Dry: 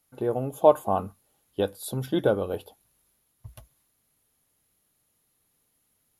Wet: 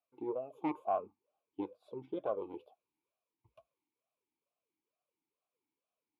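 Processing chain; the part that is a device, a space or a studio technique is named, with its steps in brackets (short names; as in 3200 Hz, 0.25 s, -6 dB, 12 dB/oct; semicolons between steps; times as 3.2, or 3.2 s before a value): talk box (tube stage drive 15 dB, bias 0.65; vowel sweep a-u 2.2 Hz); 0.96–2.4 LPF 2400 Hz 6 dB/oct; gain +1 dB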